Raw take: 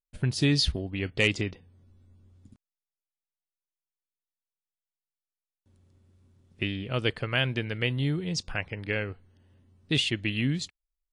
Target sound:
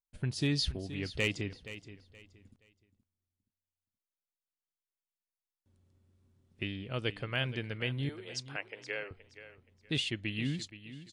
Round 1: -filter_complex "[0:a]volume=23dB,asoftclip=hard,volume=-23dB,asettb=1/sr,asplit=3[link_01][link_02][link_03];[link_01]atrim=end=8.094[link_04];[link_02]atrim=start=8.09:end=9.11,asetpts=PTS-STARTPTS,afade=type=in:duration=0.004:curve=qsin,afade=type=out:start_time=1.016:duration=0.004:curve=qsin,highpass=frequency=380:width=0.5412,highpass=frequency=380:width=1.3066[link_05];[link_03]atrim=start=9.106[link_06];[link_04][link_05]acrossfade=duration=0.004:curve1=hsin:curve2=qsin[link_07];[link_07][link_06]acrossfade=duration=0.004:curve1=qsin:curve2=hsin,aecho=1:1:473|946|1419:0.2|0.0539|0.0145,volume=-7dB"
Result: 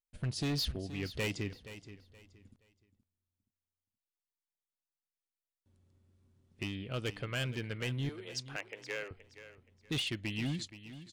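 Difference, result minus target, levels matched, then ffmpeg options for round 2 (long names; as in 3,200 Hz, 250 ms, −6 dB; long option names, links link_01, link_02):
gain into a clipping stage and back: distortion +22 dB
-filter_complex "[0:a]volume=13dB,asoftclip=hard,volume=-13dB,asettb=1/sr,asplit=3[link_01][link_02][link_03];[link_01]atrim=end=8.094[link_04];[link_02]atrim=start=8.09:end=9.11,asetpts=PTS-STARTPTS,afade=type=in:duration=0.004:curve=qsin,afade=type=out:start_time=1.016:duration=0.004:curve=qsin,highpass=frequency=380:width=0.5412,highpass=frequency=380:width=1.3066[link_05];[link_03]atrim=start=9.106[link_06];[link_04][link_05]acrossfade=duration=0.004:curve1=hsin:curve2=qsin[link_07];[link_07][link_06]acrossfade=duration=0.004:curve1=qsin:curve2=hsin,aecho=1:1:473|946|1419:0.2|0.0539|0.0145,volume=-7dB"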